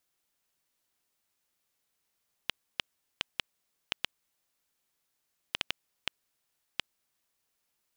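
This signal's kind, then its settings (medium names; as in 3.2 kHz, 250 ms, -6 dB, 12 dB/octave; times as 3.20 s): random clicks 2.4 per s -10 dBFS 4.69 s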